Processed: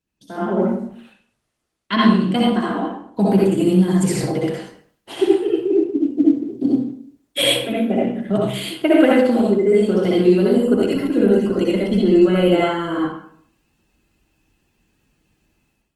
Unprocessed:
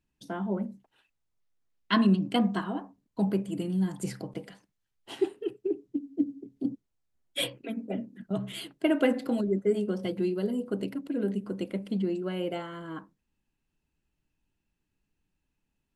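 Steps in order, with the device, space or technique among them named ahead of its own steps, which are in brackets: far-field microphone of a smart speaker (reverb RT60 0.60 s, pre-delay 57 ms, DRR -4.5 dB; HPF 82 Hz 6 dB/oct; AGC gain up to 14 dB; gain -1 dB; Opus 20 kbps 48000 Hz)

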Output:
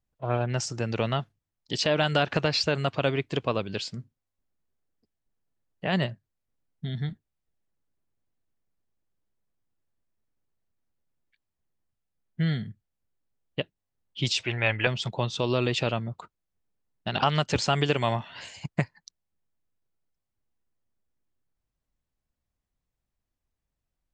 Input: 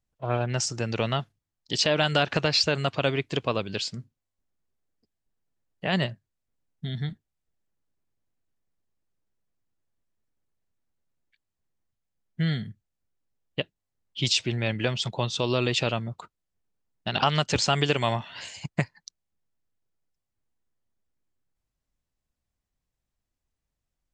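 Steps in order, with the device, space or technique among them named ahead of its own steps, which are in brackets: behind a face mask (high shelf 3100 Hz -6 dB); 14.43–14.87 EQ curve 110 Hz 0 dB, 150 Hz -12 dB, 870 Hz +7 dB, 2600 Hz +9 dB, 4400 Hz -4 dB

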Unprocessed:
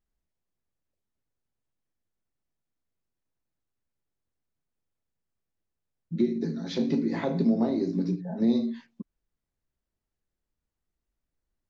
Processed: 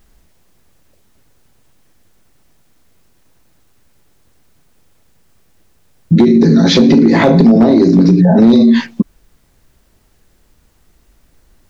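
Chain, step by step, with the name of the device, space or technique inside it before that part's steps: loud club master (compressor 2.5:1, threshold -27 dBFS, peak gain reduction 6 dB; hard clip -23 dBFS, distortion -21 dB; maximiser +33 dB); gain -1 dB

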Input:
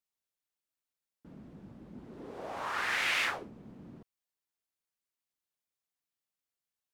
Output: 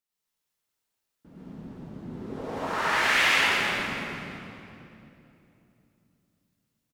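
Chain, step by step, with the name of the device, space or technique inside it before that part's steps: cave (echo 0.216 s -9 dB; reverb RT60 2.9 s, pre-delay 82 ms, DRR -9 dB)

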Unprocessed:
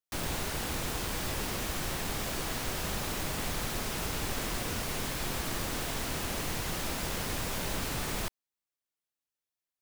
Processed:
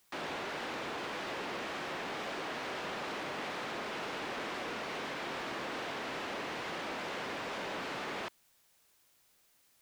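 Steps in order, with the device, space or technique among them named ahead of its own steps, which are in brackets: tape answering machine (BPF 320–2900 Hz; soft clip -34.5 dBFS, distortion -16 dB; wow and flutter; white noise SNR 29 dB); gain +2 dB

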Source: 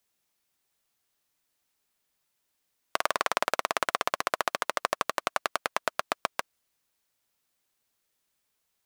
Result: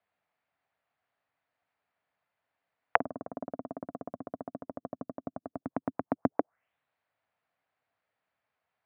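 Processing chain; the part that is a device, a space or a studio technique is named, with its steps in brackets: 5.63–6.16 band shelf 570 Hz -12 dB 1.1 oct; envelope filter bass rig (envelope low-pass 260–4800 Hz down, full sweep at -30 dBFS; speaker cabinet 81–2100 Hz, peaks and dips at 150 Hz -3 dB, 220 Hz -6 dB, 360 Hz -10 dB, 690 Hz +7 dB); gain +1.5 dB

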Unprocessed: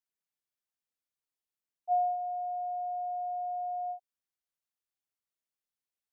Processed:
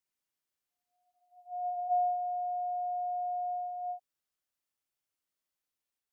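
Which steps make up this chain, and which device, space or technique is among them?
reverse reverb (reverse; reverb RT60 0.90 s, pre-delay 0.1 s, DRR 0 dB; reverse)

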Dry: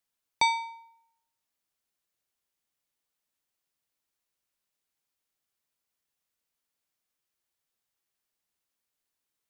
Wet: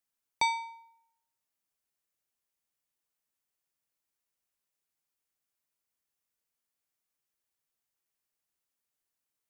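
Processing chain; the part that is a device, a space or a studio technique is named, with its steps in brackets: exciter from parts (in parallel at -10.5 dB: HPF 3400 Hz 24 dB/oct + soft clip -28.5 dBFS, distortion -12 dB); on the sum: gain -3.5 dB

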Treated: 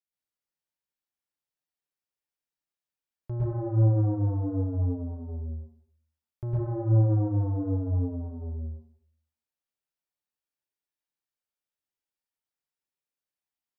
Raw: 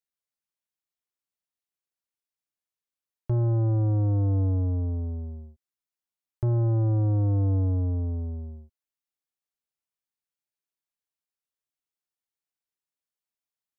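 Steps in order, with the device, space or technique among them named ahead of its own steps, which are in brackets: bathroom (reverb RT60 0.65 s, pre-delay 0.103 s, DRR -7 dB); gain -8.5 dB

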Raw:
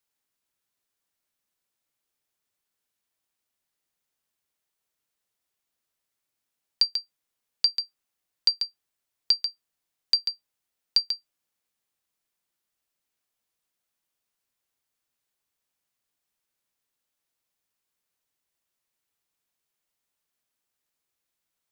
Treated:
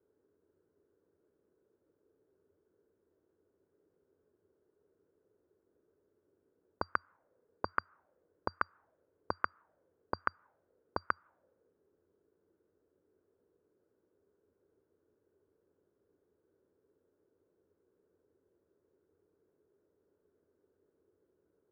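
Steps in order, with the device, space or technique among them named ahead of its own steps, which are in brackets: envelope filter bass rig (envelope low-pass 410–1200 Hz up, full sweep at -30.5 dBFS; speaker cabinet 87–2100 Hz, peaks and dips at 88 Hz +7 dB, 130 Hz -8 dB, 220 Hz -6 dB, 740 Hz -7 dB, 1500 Hz +9 dB); gain +17.5 dB

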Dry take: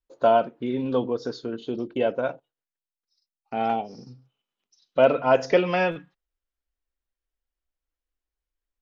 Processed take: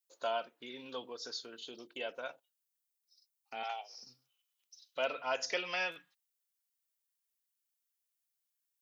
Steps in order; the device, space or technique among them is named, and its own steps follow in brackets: 3.63–4.03 HPF 570 Hz 24 dB/oct; parallel compression (in parallel at -3 dB: compressor, threshold -33 dBFS, peak gain reduction 19.5 dB); on the sum: differentiator; gain +2.5 dB

